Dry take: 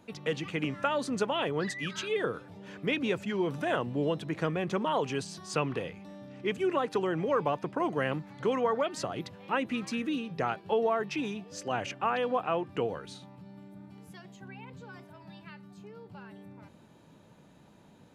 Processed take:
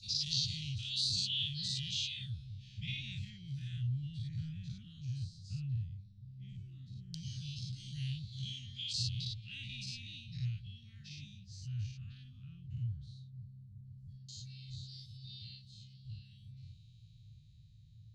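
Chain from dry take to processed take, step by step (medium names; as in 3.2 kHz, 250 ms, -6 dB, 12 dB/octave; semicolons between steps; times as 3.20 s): every event in the spectrogram widened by 120 ms; LFO low-pass saw down 0.14 Hz 780–4800 Hz; Chebyshev band-stop 120–4100 Hz, order 4; trim +5.5 dB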